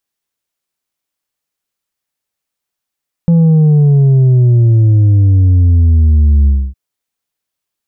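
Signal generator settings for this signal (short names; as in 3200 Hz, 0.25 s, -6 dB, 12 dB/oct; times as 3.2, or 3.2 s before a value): sub drop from 170 Hz, over 3.46 s, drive 4 dB, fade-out 0.27 s, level -5.5 dB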